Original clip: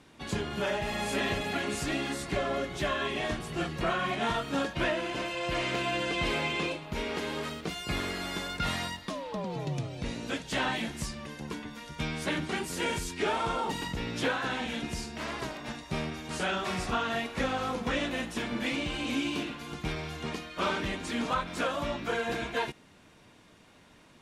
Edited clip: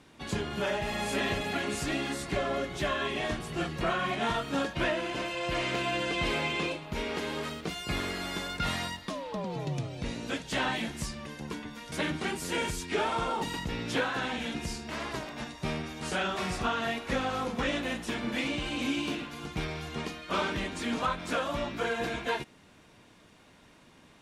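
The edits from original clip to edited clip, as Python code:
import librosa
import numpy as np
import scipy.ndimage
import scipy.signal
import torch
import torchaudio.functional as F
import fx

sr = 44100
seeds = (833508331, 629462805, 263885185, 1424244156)

y = fx.edit(x, sr, fx.cut(start_s=11.92, length_s=0.28), tone=tone)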